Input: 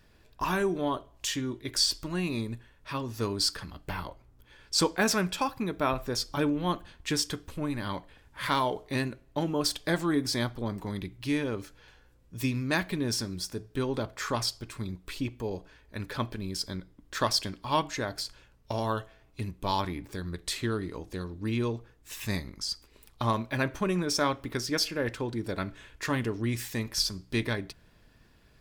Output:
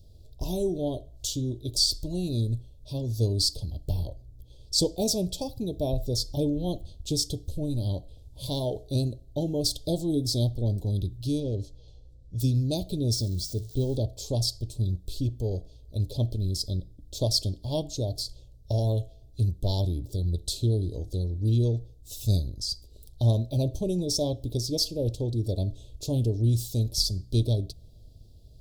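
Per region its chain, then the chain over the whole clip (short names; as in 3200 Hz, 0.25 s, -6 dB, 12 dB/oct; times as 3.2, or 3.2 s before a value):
11.4–12.4 overloaded stage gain 26.5 dB + air absorption 59 m
13.15–13.97 switching spikes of -33 dBFS + bell 13000 Hz -13 dB 0.87 oct
whole clip: elliptic band-stop 640–3800 Hz, stop band 60 dB; resonant low shelf 140 Hz +8.5 dB, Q 1.5; gain +2.5 dB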